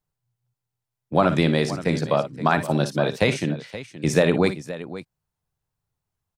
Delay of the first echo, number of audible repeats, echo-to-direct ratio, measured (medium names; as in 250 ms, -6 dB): 55 ms, 2, -9.5 dB